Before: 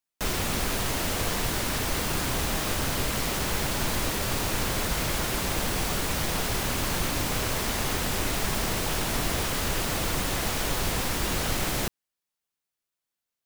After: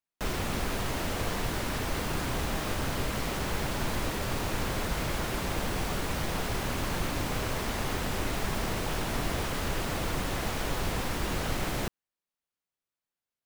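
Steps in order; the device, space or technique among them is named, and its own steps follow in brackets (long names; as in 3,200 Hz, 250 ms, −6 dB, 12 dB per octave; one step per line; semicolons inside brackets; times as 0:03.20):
behind a face mask (high-shelf EQ 3,400 Hz −8 dB)
level −2 dB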